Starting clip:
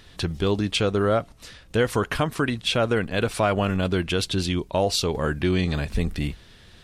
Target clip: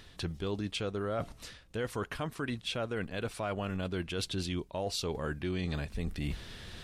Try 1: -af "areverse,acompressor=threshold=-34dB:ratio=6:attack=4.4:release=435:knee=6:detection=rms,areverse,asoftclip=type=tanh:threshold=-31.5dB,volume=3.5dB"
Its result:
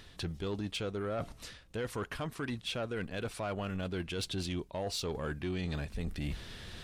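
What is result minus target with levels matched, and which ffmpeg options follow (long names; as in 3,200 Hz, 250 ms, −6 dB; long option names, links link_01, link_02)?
soft clipping: distortion +21 dB
-af "areverse,acompressor=threshold=-34dB:ratio=6:attack=4.4:release=435:knee=6:detection=rms,areverse,asoftclip=type=tanh:threshold=-19.5dB,volume=3.5dB"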